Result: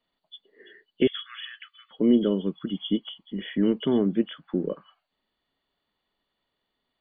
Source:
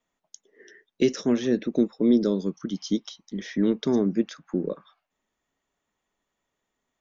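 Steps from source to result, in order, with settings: nonlinear frequency compression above 2800 Hz 4:1; 1.07–1.91 brick-wall FIR high-pass 1100 Hz

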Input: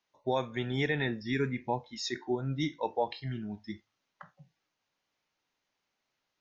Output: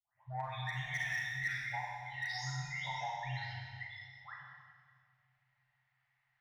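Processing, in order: spectral delay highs late, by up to 0.5 s; added harmonics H 3 -26 dB, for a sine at -19 dBFS; Chebyshev band-stop 130–710 Hz, order 4; bell 1900 Hz +14.5 dB 0.27 oct; compressor 2:1, threshold -45 dBFS, peak gain reduction 12.5 dB; low-pass opened by the level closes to 2300 Hz, open at -38.5 dBFS; hard clip -34.5 dBFS, distortion -17 dB; on a send: dark delay 0.167 s, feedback 82%, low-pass 410 Hz, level -23.5 dB; on the sum: Schroeder reverb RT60 1.7 s, combs from 31 ms, DRR -1.5 dB; gain +1 dB

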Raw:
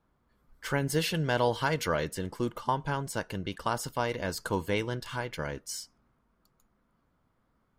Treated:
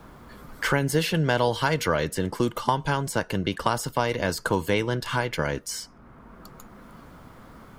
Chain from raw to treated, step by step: three-band squash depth 70%; gain +5.5 dB

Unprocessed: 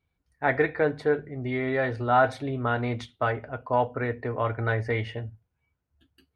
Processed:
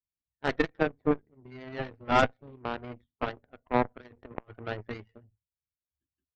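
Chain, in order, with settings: bin magnitudes rounded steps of 30 dB; LPF 1900 Hz 12 dB/oct; bell 150 Hz -4 dB 1.1 oct; 3.84–4.59 negative-ratio compressor -32 dBFS, ratio -0.5; added harmonics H 3 -15 dB, 4 -15 dB, 6 -24 dB, 7 -24 dB, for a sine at -9.5 dBFS; low shelf 410 Hz +9.5 dB

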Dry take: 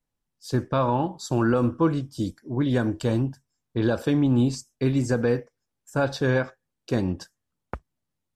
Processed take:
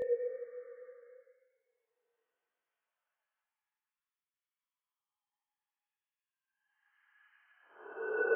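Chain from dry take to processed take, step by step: sine-wave speech; Paulstretch 16×, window 0.10 s, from 5.43; detuned doubles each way 12 cents; gain +7 dB

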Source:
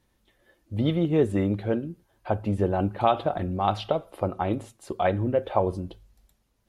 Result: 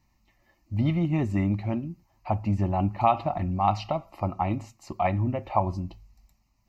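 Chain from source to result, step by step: fixed phaser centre 2300 Hz, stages 8; gain +3 dB

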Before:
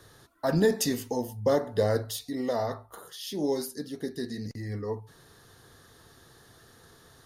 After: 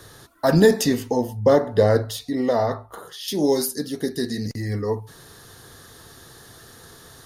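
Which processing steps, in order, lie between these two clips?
high shelf 4900 Hz +3 dB, from 0.81 s -8.5 dB, from 3.28 s +5 dB; gain +8.5 dB

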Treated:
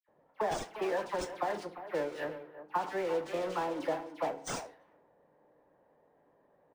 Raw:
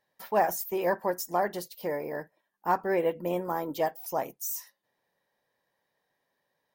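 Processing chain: zero-crossing step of -29.5 dBFS; gate -28 dBFS, range -28 dB; low shelf 180 Hz -11 dB; compressor 10:1, threshold -34 dBFS, peak gain reduction 15 dB; dispersion lows, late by 86 ms, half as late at 1900 Hz; speakerphone echo 0.35 s, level -10 dB; FDN reverb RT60 0.7 s, low-frequency decay 1.5×, high-frequency decay 0.75×, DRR 9.5 dB; low-pass opened by the level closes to 540 Hz, open at -34 dBFS; decimation joined by straight lines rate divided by 3×; gain +3.5 dB

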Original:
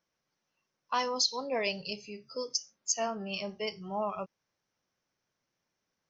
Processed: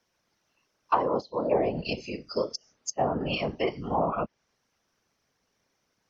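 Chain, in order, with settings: treble ducked by the level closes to 710 Hz, closed at -27.5 dBFS; whisperiser; gain +8.5 dB

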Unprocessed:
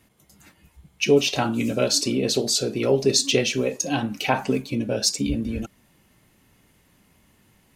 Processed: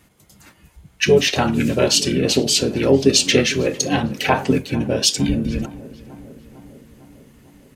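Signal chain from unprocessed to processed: harmoniser -7 st -6 dB; darkening echo 0.452 s, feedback 68%, low-pass 2000 Hz, level -18.5 dB; gain +4 dB

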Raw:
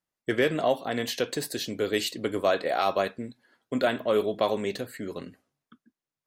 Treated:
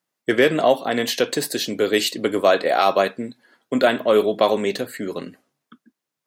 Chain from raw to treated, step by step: HPF 160 Hz 12 dB/oct; gain +8 dB

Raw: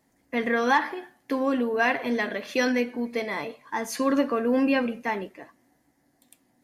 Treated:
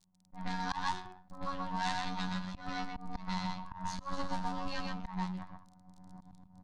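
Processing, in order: minimum comb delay 5.5 ms; recorder AGC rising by 26 dB/s; robotiser 92.2 Hz; EQ curve 190 Hz 0 dB, 430 Hz -29 dB, 930 Hz -3 dB, 2000 Hz -16 dB; echo 0.126 s -3 dB; auto swell 0.136 s; low-pass opened by the level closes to 660 Hz, open at -27.5 dBFS; crackle 20/s -59 dBFS; band shelf 5900 Hz +15 dB

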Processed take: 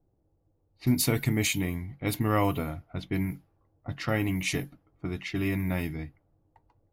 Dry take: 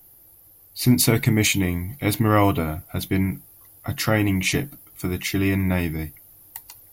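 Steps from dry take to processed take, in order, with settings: low-pass opened by the level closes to 510 Hz, open at -18 dBFS; gain -7.5 dB

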